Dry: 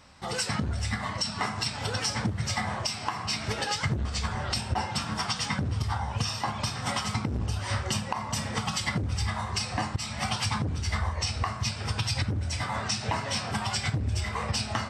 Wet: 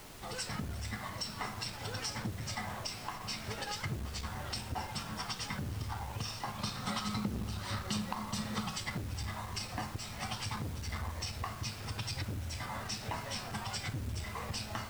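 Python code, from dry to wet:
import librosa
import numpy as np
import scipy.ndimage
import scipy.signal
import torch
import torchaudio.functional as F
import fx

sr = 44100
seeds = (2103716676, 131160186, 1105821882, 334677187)

y = fx.graphic_eq_31(x, sr, hz=(200, 1250, 4000), db=(12, 6, 9), at=(6.58, 8.68))
y = fx.dmg_noise_colour(y, sr, seeds[0], colour='pink', level_db=-41.0)
y = fx.transformer_sat(y, sr, knee_hz=230.0)
y = F.gain(torch.from_numpy(y), -9.0).numpy()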